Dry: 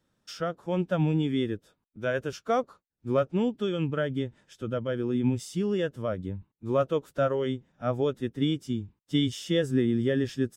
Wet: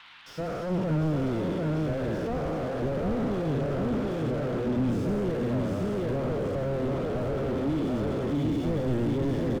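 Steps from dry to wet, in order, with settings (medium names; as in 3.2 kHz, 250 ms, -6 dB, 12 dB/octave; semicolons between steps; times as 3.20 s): spectral sustain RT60 2.19 s; band noise 880–3600 Hz -51 dBFS; tempo 1.1×; feedback delay 739 ms, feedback 48%, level -3.5 dB; slew-rate limiter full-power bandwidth 18 Hz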